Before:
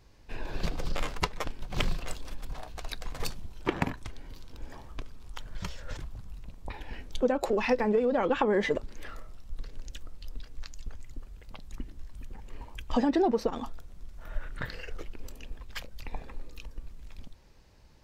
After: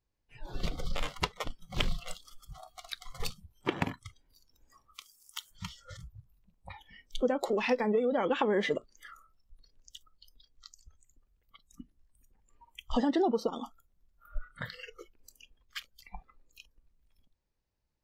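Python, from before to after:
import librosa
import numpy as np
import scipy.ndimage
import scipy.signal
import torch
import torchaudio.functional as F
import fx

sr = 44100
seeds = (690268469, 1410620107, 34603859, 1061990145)

y = fx.riaa(x, sr, side='recording', at=(4.94, 5.5), fade=0.02)
y = fx.noise_reduce_blind(y, sr, reduce_db=23)
y = fx.dynamic_eq(y, sr, hz=3300.0, q=2.3, threshold_db=-53.0, ratio=4.0, max_db=5)
y = F.gain(torch.from_numpy(y), -2.5).numpy()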